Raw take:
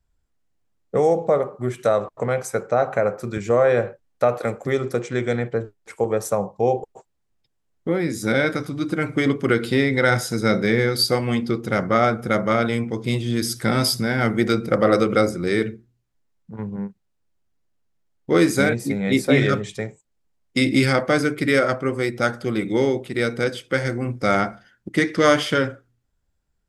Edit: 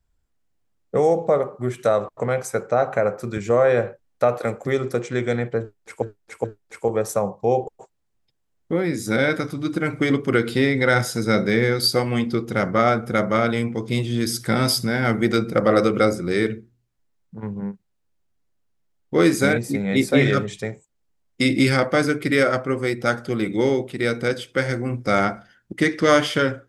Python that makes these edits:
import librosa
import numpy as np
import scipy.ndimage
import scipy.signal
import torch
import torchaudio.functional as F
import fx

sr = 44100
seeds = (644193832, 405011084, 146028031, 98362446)

y = fx.edit(x, sr, fx.repeat(start_s=5.6, length_s=0.42, count=3), tone=tone)